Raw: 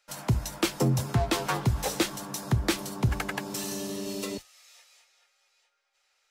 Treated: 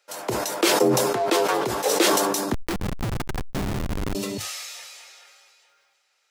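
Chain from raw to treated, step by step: high-pass sweep 420 Hz -> 110 Hz, 2.24–3.26; 2.53–4.15 Schmitt trigger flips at -26.5 dBFS; sustainer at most 24 dB/s; gain +2.5 dB

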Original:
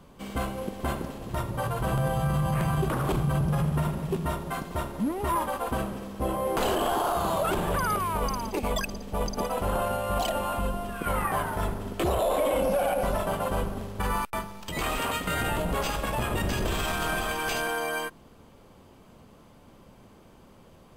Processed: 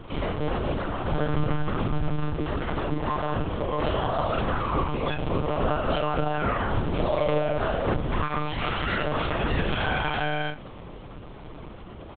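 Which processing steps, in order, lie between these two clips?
dynamic EQ 890 Hz, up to -6 dB, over -47 dBFS, Q 5.9; in parallel at +0.5 dB: negative-ratio compressor -39 dBFS, ratio -1; on the sum: plain phase-vocoder stretch 0.58×; short-mantissa float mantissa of 2-bit; doubler 40 ms -3 dB; echo 77 ms -19.5 dB; monotone LPC vocoder at 8 kHz 150 Hz; gain +1.5 dB

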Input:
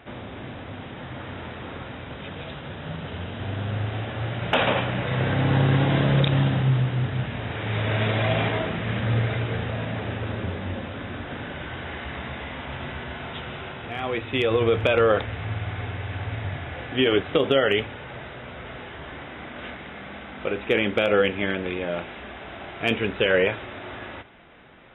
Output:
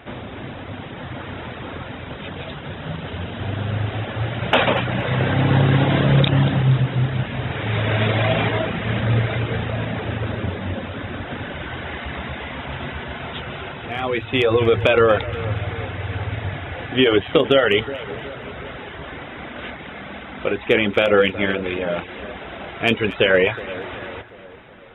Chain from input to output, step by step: reverb removal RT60 0.56 s; split-band echo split 1300 Hz, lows 0.369 s, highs 0.235 s, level -15.5 dB; gain +5.5 dB

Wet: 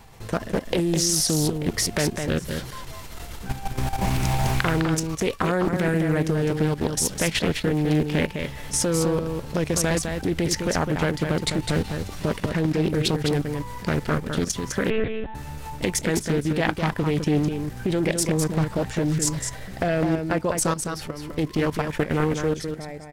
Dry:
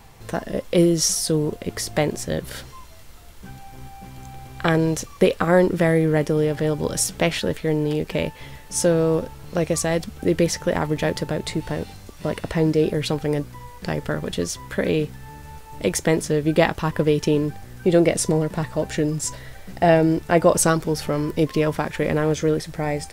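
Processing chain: ending faded out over 6.45 s; recorder AGC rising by 7.8 dB/s; dynamic EQ 530 Hz, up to -5 dB, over -30 dBFS, Q 0.79; level quantiser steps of 13 dB; echo 0.206 s -6 dB; 14.9–15.35 monotone LPC vocoder at 8 kHz 220 Hz; Doppler distortion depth 0.44 ms; gain +4 dB

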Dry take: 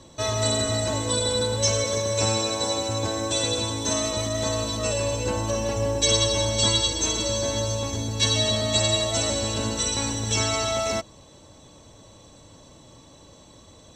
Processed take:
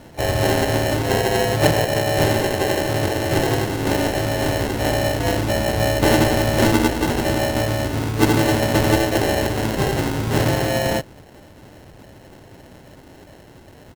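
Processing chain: sample-and-hold 37×; reverse echo 39 ms -23 dB; harmoniser +5 st -8 dB; gain +5 dB

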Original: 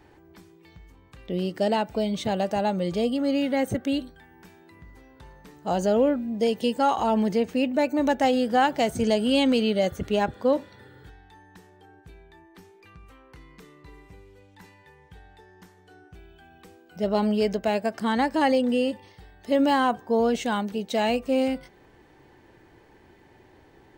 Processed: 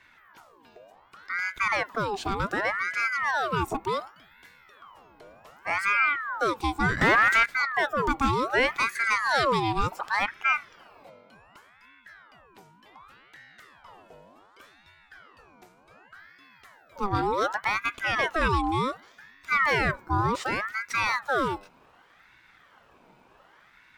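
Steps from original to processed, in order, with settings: 7.01–7.46 sample leveller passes 3; ring modulator with a swept carrier 1200 Hz, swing 55%, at 0.67 Hz

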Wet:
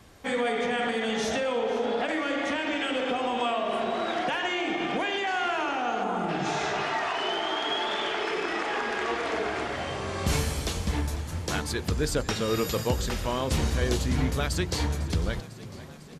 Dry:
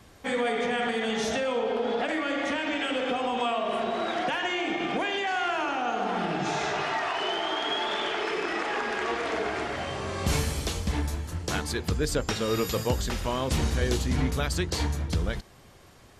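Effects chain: spectral gain 6.03–6.29, 1500–6200 Hz -11 dB; frequency-shifting echo 0.5 s, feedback 64%, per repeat +38 Hz, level -17 dB

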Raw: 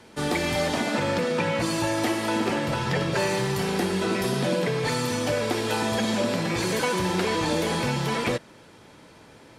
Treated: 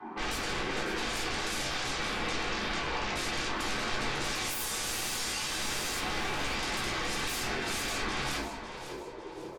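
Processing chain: wah 0.3 Hz 210–1100 Hz, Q 10; de-hum 87.29 Hz, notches 35; spectral gate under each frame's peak -20 dB weak; in parallel at 0 dB: limiter -48 dBFS, peak gain reduction 9.5 dB; on the sum: painted sound rise, 4.2–5.99, 600–6400 Hz -47 dBFS; three-band isolator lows -12 dB, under 370 Hz, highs -12 dB, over 2400 Hz; small resonant body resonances 210/350/940 Hz, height 14 dB, ringing for 25 ms; sine folder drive 15 dB, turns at -37.5 dBFS; feedback echo 0.549 s, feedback 40%, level -11.5 dB; shoebox room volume 300 m³, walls furnished, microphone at 3.7 m

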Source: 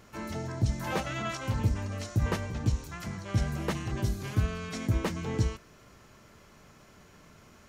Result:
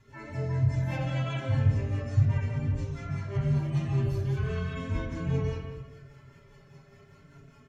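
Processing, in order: median-filter separation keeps harmonic; high shelf 6900 Hz -5 dB; comb 7.3 ms, depth 79%; rotary speaker horn 5 Hz; 2.25–3.37 dispersion highs, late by 47 ms, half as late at 1000 Hz; speakerphone echo 0.18 s, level -9 dB; reverb RT60 1.0 s, pre-delay 3 ms, DRR -3.5 dB; gain -7 dB

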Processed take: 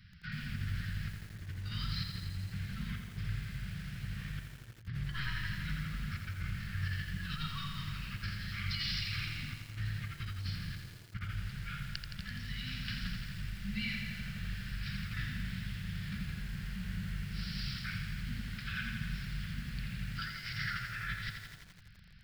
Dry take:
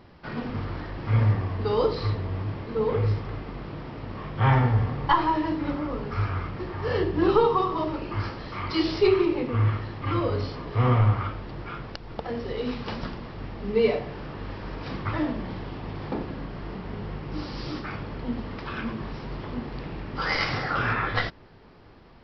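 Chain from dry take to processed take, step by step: Chebyshev band-stop 190–1500 Hz, order 4; high shelf 5000 Hz +3 dB; negative-ratio compressor -33 dBFS, ratio -0.5; lo-fi delay 84 ms, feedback 80%, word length 8-bit, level -6 dB; gain -6 dB

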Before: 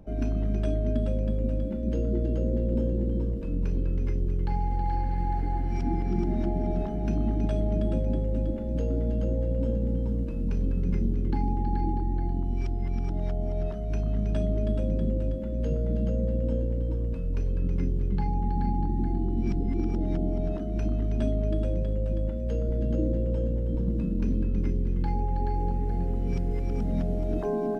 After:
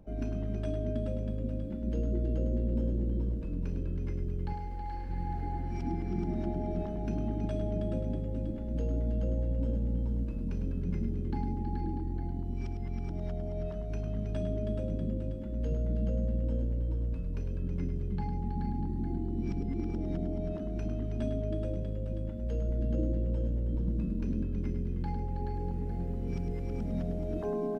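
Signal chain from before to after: 4.53–5.1 bell 130 Hz -10.5 dB 1.8 oct; echo 0.104 s -8.5 dB; gain -5.5 dB

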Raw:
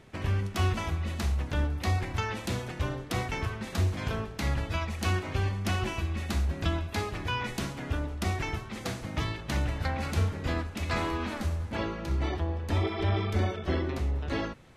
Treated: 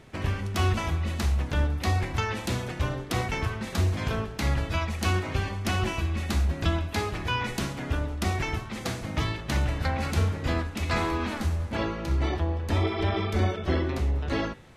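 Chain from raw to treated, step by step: de-hum 97.34 Hz, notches 38; gain +3.5 dB

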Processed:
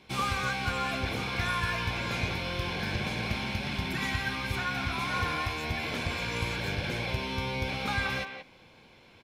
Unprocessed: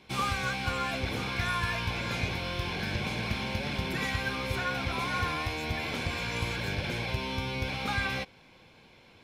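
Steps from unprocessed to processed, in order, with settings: 3.39–5.09 bell 490 Hz -12.5 dB 0.33 oct; speakerphone echo 0.18 s, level -7 dB

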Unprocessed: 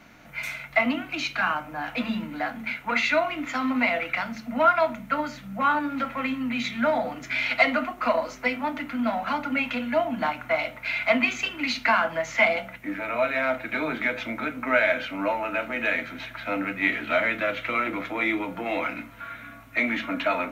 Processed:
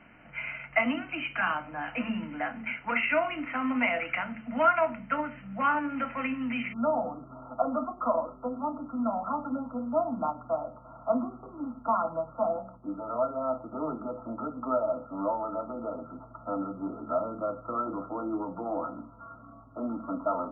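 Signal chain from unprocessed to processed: brick-wall FIR low-pass 3100 Hz, from 6.72 s 1400 Hz; gain -3.5 dB

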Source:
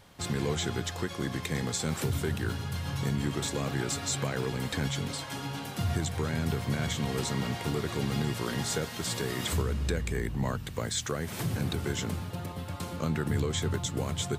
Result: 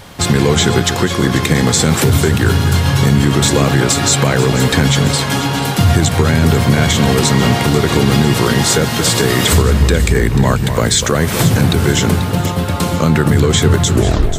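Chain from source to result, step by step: tape stop at the end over 0.46 s; echo with dull and thin repeats by turns 0.244 s, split 1700 Hz, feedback 68%, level -10 dB; maximiser +21 dB; gain -1 dB

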